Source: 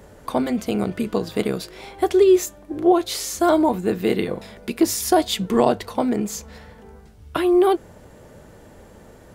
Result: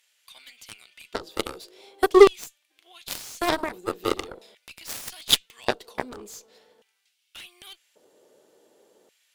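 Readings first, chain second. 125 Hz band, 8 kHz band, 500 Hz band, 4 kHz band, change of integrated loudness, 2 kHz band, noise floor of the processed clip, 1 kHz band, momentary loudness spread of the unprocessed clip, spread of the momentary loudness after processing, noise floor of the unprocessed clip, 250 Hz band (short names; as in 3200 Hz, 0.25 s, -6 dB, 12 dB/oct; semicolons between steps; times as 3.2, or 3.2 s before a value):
-14.0 dB, -6.0 dB, -4.0 dB, +2.5 dB, -3.0 dB, +0.5 dB, -72 dBFS, -6.5 dB, 12 LU, 27 LU, -47 dBFS, -11.5 dB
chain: LFO high-pass square 0.44 Hz 390–2300 Hz; resonant high shelf 2500 Hz +7 dB, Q 1.5; added harmonics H 4 -23 dB, 7 -15 dB, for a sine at 3 dBFS; gain -4 dB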